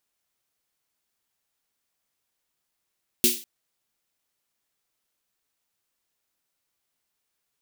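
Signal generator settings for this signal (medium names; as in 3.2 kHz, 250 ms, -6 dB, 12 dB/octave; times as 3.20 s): snare drum length 0.20 s, tones 240 Hz, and 360 Hz, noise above 2.6 kHz, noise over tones 6 dB, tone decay 0.26 s, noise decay 0.38 s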